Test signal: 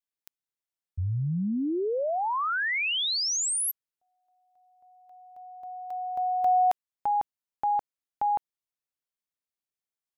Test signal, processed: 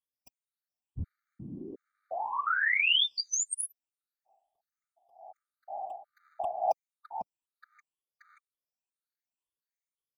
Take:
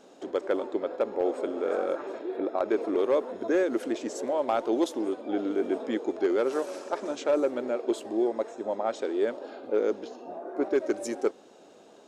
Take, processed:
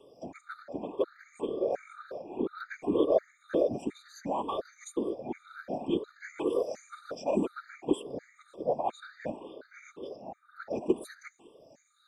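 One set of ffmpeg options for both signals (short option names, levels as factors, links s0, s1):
-af "afftfilt=real='re*pow(10,19/40*sin(2*PI*(0.64*log(max(b,1)*sr/1024/100)/log(2)-(2)*(pts-256)/sr)))':imag='im*pow(10,19/40*sin(2*PI*(0.64*log(max(b,1)*sr/1024/100)/log(2)-(2)*(pts-256)/sr)))':win_size=1024:overlap=0.75,afftfilt=real='hypot(re,im)*cos(2*PI*random(0))':imag='hypot(re,im)*sin(2*PI*random(1))':win_size=512:overlap=0.75,afftfilt=real='re*gt(sin(2*PI*1.4*pts/sr)*(1-2*mod(floor(b*sr/1024/1200),2)),0)':imag='im*gt(sin(2*PI*1.4*pts/sr)*(1-2*mod(floor(b*sr/1024/1200),2)),0)':win_size=1024:overlap=0.75"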